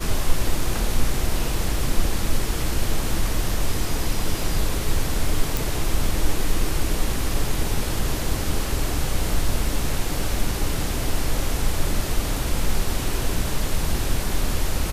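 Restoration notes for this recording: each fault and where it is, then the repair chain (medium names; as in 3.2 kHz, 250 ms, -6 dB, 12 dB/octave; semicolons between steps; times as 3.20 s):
5.57 s: pop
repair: de-click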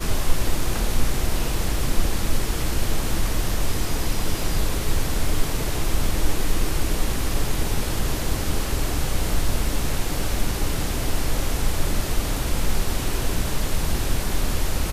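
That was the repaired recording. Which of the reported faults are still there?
nothing left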